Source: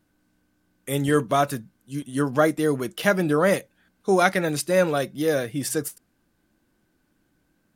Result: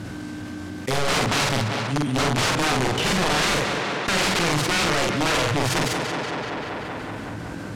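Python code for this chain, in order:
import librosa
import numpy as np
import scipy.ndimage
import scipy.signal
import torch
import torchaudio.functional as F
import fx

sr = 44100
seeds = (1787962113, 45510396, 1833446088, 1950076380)

p1 = fx.tracing_dist(x, sr, depth_ms=0.39)
p2 = scipy.signal.sosfilt(scipy.signal.butter(4, 43.0, 'highpass', fs=sr, output='sos'), p1)
p3 = fx.low_shelf(p2, sr, hz=210.0, db=3.0)
p4 = fx.comb_fb(p3, sr, f0_hz=61.0, decay_s=0.79, harmonics='all', damping=0.0, mix_pct=30)
p5 = fx.level_steps(p4, sr, step_db=12)
p6 = p4 + (p5 * 10.0 ** (-1.0 / 20.0))
p7 = fx.peak_eq(p6, sr, hz=110.0, db=10.5, octaves=0.35)
p8 = (np.mod(10.0 ** (18.5 / 20.0) * p7 + 1.0, 2.0) - 1.0) / 10.0 ** (18.5 / 20.0)
p9 = scipy.signal.sosfilt(scipy.signal.butter(2, 7100.0, 'lowpass', fs=sr, output='sos'), p8)
p10 = fx.hum_notches(p9, sr, base_hz=60, count=2)
p11 = fx.doubler(p10, sr, ms=47.0, db=-3)
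p12 = p11 + fx.echo_tape(p11, sr, ms=189, feedback_pct=68, wet_db=-12.0, lp_hz=5100.0, drive_db=14.0, wow_cents=38, dry=0)
y = fx.env_flatten(p12, sr, amount_pct=70)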